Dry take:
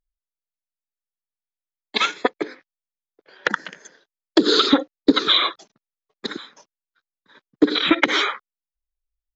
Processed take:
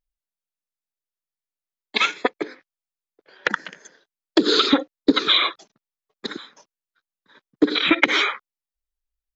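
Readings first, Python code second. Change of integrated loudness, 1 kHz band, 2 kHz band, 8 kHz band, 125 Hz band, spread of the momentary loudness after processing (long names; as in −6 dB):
−0.5 dB, −1.0 dB, +1.5 dB, can't be measured, −1.5 dB, 17 LU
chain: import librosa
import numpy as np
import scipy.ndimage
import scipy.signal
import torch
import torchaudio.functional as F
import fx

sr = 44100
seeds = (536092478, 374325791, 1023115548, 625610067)

y = fx.dynamic_eq(x, sr, hz=2400.0, q=3.1, threshold_db=-36.0, ratio=4.0, max_db=6)
y = y * 10.0 ** (-1.5 / 20.0)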